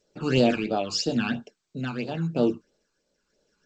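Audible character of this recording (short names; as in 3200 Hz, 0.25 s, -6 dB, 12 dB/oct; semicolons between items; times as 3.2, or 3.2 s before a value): phasing stages 12, 3 Hz, lowest notch 570–2200 Hz; tremolo triangle 0.9 Hz, depth 60%; G.722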